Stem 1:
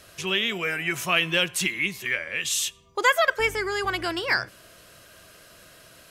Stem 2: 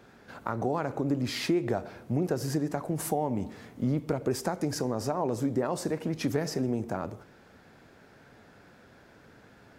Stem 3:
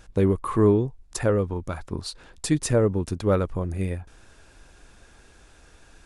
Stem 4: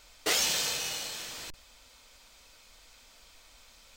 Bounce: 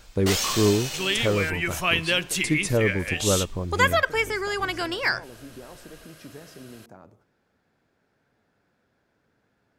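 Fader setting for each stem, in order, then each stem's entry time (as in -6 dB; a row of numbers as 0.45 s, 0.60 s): -0.5 dB, -15.0 dB, -2.0 dB, +1.0 dB; 0.75 s, 0.00 s, 0.00 s, 0.00 s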